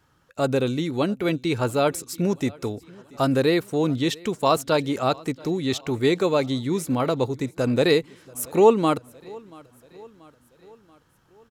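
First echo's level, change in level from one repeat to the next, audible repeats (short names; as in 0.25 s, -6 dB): -24.0 dB, -5.0 dB, 3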